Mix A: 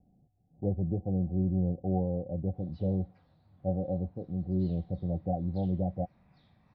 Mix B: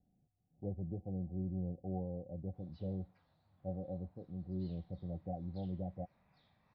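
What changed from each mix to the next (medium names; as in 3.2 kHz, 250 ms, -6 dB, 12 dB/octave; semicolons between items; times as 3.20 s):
speech -10.5 dB; background -3.5 dB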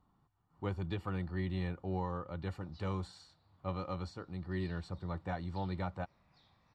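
speech: remove rippled Chebyshev low-pass 770 Hz, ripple 6 dB; master: remove distance through air 210 m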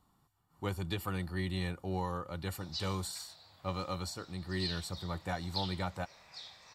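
background +12.0 dB; master: remove tape spacing loss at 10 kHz 26 dB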